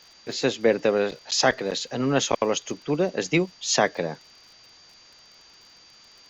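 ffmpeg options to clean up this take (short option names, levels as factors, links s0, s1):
-af "adeclick=t=4,bandreject=f=4700:w=30,afwtdn=0.0028"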